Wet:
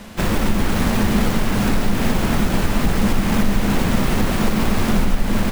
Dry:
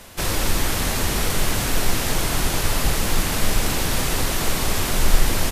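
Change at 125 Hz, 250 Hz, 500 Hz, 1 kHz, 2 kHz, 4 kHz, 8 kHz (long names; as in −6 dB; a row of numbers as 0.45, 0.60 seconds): +4.5, +10.5, +3.5, +2.5, +0.5, −4.0, −7.5 decibels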